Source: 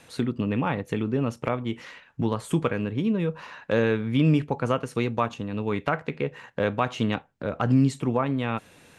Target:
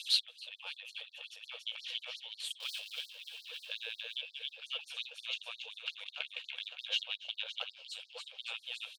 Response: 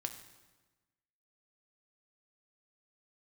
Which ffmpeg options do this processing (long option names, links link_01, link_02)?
-filter_complex "[0:a]asettb=1/sr,asplit=3[link_01][link_02][link_03];[link_01]atrim=end=2.604[link_04];[link_02]atrim=start=2.6:end=3.15,asetpts=PTS-STARTPTS,afade=type=in:duration=0.004:curve=qsin,afade=type=out:start_time=0.546:duration=0.004:curve=qsin,aeval=exprs='val(0)+0.5*0.0531*sgn(val(0))':channel_layout=same[link_05];[link_03]atrim=start=3.146[link_06];[link_04][link_05]acrossfade=duration=0.004:curve1=hsin:curve2=qsin[link_07];[link_07][link_06]acrossfade=duration=0.004:curve1=qsin:curve2=hsin,equalizer=frequency=530:width_type=o:width=2.9:gain=-11.5,bandreject=frequency=2000:width=5.5,aecho=1:1:282|564|846|1128|1410|1692|1974|2256:0.562|0.337|0.202|0.121|0.0729|0.0437|0.0262|0.0157,asplit=2[link_08][link_09];[link_09]volume=29.5dB,asoftclip=hard,volume=-29.5dB,volume=-5.5dB[link_10];[link_08][link_10]amix=inputs=2:normalize=0,firequalizer=gain_entry='entry(100,0);entry(190,12);entry(570,-15);entry(1200,-22);entry(3100,5);entry(6500,-14)':delay=0.05:min_phase=1,acompressor=threshold=-36dB:ratio=10,asettb=1/sr,asplit=3[link_11][link_12][link_13];[link_11]atrim=end=6.044[link_14];[link_12]atrim=start=6.04:end=7.76,asetpts=PTS-STARTPTS,afade=type=in:duration=0.004:curve=qsin,afade=type=out:start_time=1.716:duration=0.004:curve=qsin,agate=range=-13dB:threshold=-40dB:ratio=16:detection=peak[link_15];[link_13]atrim=start=7.756[link_16];[link_14][link_15]acrossfade=duration=0.004:curve1=hsin:curve2=qsin[link_17];[link_17][link_16]acrossfade=duration=0.004:curve1=qsin:curve2=hsin,afftfilt=real='re*gte(b*sr/1024,450*pow(4200/450,0.5+0.5*sin(2*PI*5.6*pts/sr)))':imag='im*gte(b*sr/1024,450*pow(4200/450,0.5+0.5*sin(2*PI*5.6*pts/sr)))':win_size=1024:overlap=0.75,volume=15.5dB"